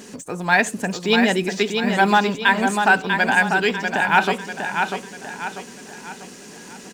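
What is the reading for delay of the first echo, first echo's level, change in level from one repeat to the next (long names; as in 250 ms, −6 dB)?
644 ms, −5.5 dB, −7.5 dB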